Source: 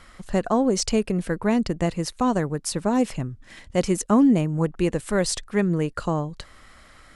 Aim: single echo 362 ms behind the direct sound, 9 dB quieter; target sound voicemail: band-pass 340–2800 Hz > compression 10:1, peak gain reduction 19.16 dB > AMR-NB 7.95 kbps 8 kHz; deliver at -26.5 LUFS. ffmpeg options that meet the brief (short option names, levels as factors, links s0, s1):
-af "highpass=340,lowpass=2800,aecho=1:1:362:0.355,acompressor=threshold=0.0158:ratio=10,volume=5.96" -ar 8000 -c:a libopencore_amrnb -b:a 7950